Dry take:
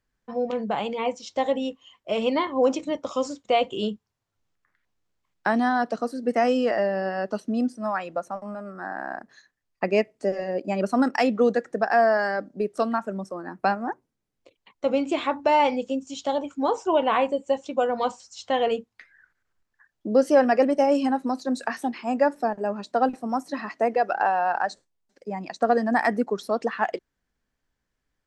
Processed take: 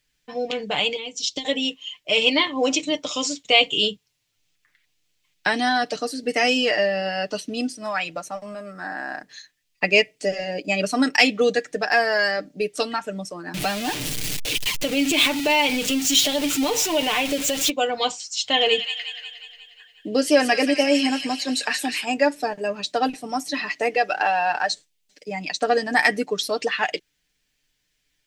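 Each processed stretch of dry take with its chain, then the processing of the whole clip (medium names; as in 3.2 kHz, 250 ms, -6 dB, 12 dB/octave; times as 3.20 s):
0.96–1.45 s: high-order bell 1.2 kHz -11.5 dB 2.4 oct + compression 3:1, threshold -37 dBFS + transient shaper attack +10 dB, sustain -3 dB
13.54–17.70 s: jump at every zero crossing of -30 dBFS + compression 2:1, threshold -25 dBFS + bass shelf 270 Hz +7 dB
18.43–22.05 s: band-stop 6 kHz, Q 13 + feedback echo behind a high-pass 179 ms, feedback 60%, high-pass 2 kHz, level -5.5 dB
whole clip: resonant high shelf 1.8 kHz +12.5 dB, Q 1.5; comb 6.7 ms, depth 60%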